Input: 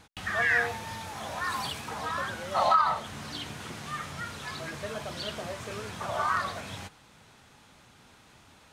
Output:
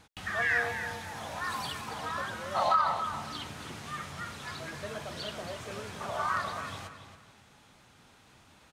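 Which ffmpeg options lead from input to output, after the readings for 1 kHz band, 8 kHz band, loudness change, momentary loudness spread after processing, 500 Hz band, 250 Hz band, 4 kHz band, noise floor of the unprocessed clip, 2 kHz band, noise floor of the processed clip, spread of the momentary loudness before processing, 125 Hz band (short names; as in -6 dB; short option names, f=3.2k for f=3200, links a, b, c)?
-2.5 dB, -3.0 dB, -2.5 dB, 14 LU, -2.5 dB, -2.5 dB, -2.5 dB, -57 dBFS, -2.5 dB, -60 dBFS, 14 LU, -2.5 dB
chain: -filter_complex "[0:a]asplit=2[a][b];[b]adelay=278,lowpass=f=4.9k:p=1,volume=-9dB,asplit=2[c][d];[d]adelay=278,lowpass=f=4.9k:p=1,volume=0.3,asplit=2[e][f];[f]adelay=278,lowpass=f=4.9k:p=1,volume=0.3[g];[a][c][e][g]amix=inputs=4:normalize=0,volume=-3dB"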